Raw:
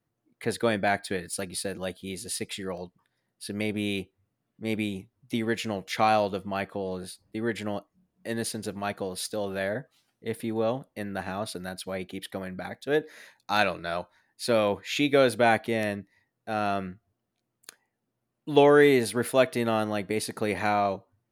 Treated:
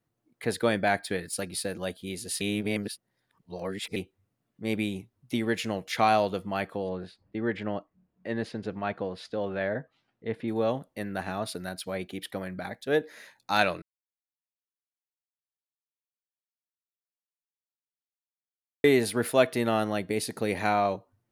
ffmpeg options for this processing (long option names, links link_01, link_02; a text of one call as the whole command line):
ffmpeg -i in.wav -filter_complex "[0:a]asettb=1/sr,asplit=3[link_01][link_02][link_03];[link_01]atrim=end=6.894[link_04];[link_02]atrim=start=6.89:end=10.48,asetpts=PTS-STARTPTS,afade=type=in:duration=0.004:curve=qsin,afade=type=out:start_time=3.586:duration=0.004:curve=qsin,lowpass=2700[link_05];[link_03]atrim=start=10.476[link_06];[link_04][link_05]acrossfade=duration=0.004:curve1=hsin:curve2=qsin[link_07];[link_07][link_06]acrossfade=duration=0.004:curve1=qsin:curve2=hsin,asettb=1/sr,asplit=3[link_08][link_09][link_10];[link_08]atrim=end=19.994[link_11];[link_09]atrim=start=19.99:end=20.65,asetpts=PTS-STARTPTS,afade=type=in:duration=0.004:curve=qsin,afade=type=out:start_time=0.656:duration=0.004:curve=qsin,equalizer=frequency=1200:width_type=o:width=1.2:gain=-4.5[link_12];[link_10]atrim=start=20.646[link_13];[link_11][link_12]acrossfade=duration=0.004:curve1=hsin:curve2=qsin[link_14];[link_14][link_13]acrossfade=duration=0.004:curve1=qsin:curve2=hsin,asplit=5[link_15][link_16][link_17][link_18][link_19];[link_15]atrim=end=2.412[link_20];[link_16]atrim=start=2.408:end=3.962,asetpts=PTS-STARTPTS,areverse[link_21];[link_17]atrim=start=3.958:end=13.82,asetpts=PTS-STARTPTS,afade=type=out:start_time=9.858:duration=0.004:curve=hsin[link_22];[link_18]atrim=start=13.82:end=18.84,asetpts=PTS-STARTPTS,volume=0[link_23];[link_19]atrim=start=18.84,asetpts=PTS-STARTPTS,afade=type=in:duration=0.004:curve=hsin[link_24];[link_20][link_21]acrossfade=duration=0.004:curve1=hsin:curve2=hsin[link_25];[link_22][link_23][link_24]concat=n=3:v=0:a=1[link_26];[link_25][link_26]acrossfade=duration=0.004:curve1=hsin:curve2=hsin" out.wav